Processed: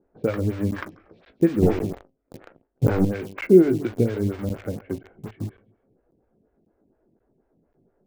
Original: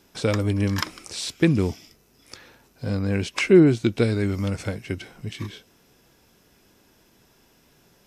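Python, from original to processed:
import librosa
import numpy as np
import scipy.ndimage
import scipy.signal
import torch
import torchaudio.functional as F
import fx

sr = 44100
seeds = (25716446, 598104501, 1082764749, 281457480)

p1 = fx.env_lowpass(x, sr, base_hz=920.0, full_db=-17.5)
p2 = p1 + fx.echo_feedback(p1, sr, ms=137, feedback_pct=31, wet_db=-17, dry=0)
p3 = fx.leveller(p2, sr, passes=5, at=(1.62, 3.05))
p4 = scipy.signal.sosfilt(scipy.signal.butter(2, 1500.0, 'lowpass', fs=sr, output='sos'), p3)
p5 = fx.peak_eq(p4, sr, hz=1000.0, db=-9.5, octaves=0.63)
p6 = fx.comb_fb(p5, sr, f0_hz=54.0, decay_s=0.22, harmonics='all', damping=0.0, mix_pct=70)
p7 = fx.quant_dither(p6, sr, seeds[0], bits=6, dither='none')
p8 = p6 + (p7 * 10.0 ** (-5.0 / 20.0))
p9 = fx.buffer_crackle(p8, sr, first_s=0.71, period_s=0.54, block=512, kind='zero')
p10 = fx.stagger_phaser(p9, sr, hz=4.2)
y = p10 * 10.0 ** (2.5 / 20.0)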